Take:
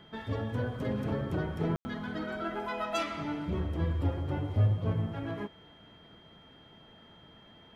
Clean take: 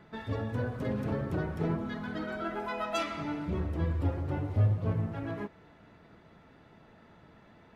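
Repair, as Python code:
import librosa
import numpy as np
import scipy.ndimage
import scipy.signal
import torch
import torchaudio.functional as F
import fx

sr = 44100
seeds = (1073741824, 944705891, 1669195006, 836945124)

y = fx.notch(x, sr, hz=3200.0, q=30.0)
y = fx.fix_ambience(y, sr, seeds[0], print_start_s=6.19, print_end_s=6.69, start_s=1.76, end_s=1.85)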